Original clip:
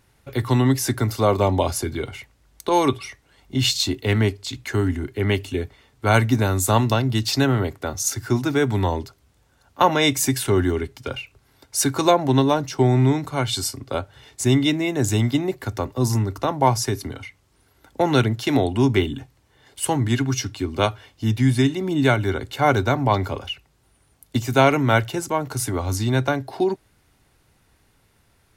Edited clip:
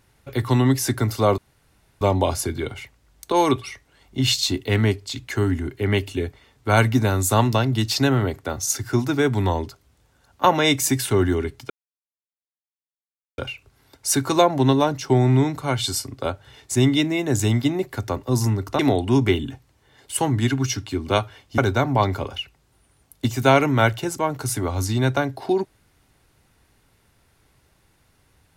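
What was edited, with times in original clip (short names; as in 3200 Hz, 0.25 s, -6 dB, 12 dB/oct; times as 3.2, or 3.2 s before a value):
1.38 insert room tone 0.63 s
11.07 insert silence 1.68 s
16.48–18.47 cut
21.26–22.69 cut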